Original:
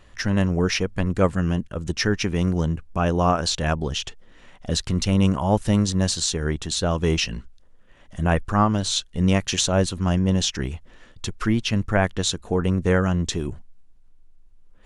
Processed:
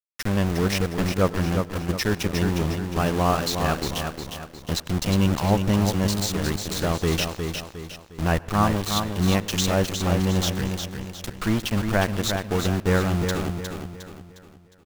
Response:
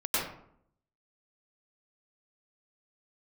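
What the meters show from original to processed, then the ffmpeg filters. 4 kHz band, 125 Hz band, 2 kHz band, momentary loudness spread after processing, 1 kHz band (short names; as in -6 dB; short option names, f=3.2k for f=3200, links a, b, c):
-2.0 dB, -1.0 dB, -0.5 dB, 11 LU, 0.0 dB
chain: -filter_complex "[0:a]lowpass=7.4k,aeval=exprs='val(0)+0.00631*(sin(2*PI*50*n/s)+sin(2*PI*2*50*n/s)/2+sin(2*PI*3*50*n/s)/3+sin(2*PI*4*50*n/s)/4+sin(2*PI*5*50*n/s)/5)':c=same,aeval=exprs='val(0)*gte(abs(val(0)),0.0631)':c=same,aecho=1:1:358|716|1074|1432|1790:0.501|0.205|0.0842|0.0345|0.0142,asplit=2[a][b];[1:a]atrim=start_sample=2205[c];[b][c]afir=irnorm=-1:irlink=0,volume=-30.5dB[d];[a][d]amix=inputs=2:normalize=0,volume=-2dB"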